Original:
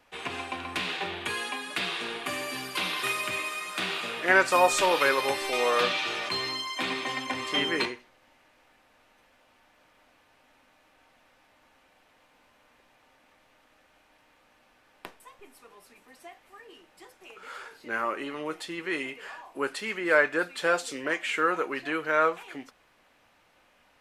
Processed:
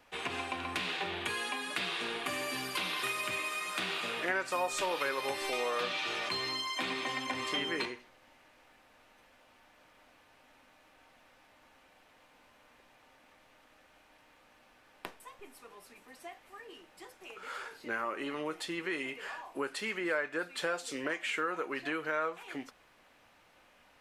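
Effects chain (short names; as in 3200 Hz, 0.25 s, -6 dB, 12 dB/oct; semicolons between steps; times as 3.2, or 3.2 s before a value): compressor 3:1, threshold -33 dBFS, peak gain reduction 13.5 dB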